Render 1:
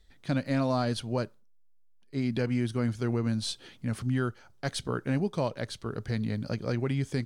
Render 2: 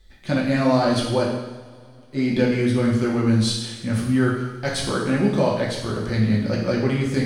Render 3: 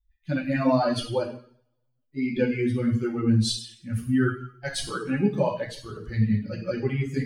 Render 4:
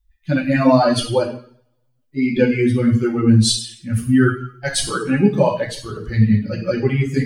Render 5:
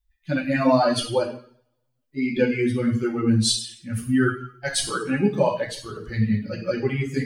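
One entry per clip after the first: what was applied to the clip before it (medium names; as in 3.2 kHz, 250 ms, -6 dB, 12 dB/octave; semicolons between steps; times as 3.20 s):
two-slope reverb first 0.99 s, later 3.2 s, from -20 dB, DRR -4.5 dB; trim +4.5 dB
expander on every frequency bin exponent 2
dynamic bell 8.6 kHz, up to +5 dB, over -53 dBFS, Q 1.3; trim +8.5 dB
bass shelf 210 Hz -6.5 dB; trim -3.5 dB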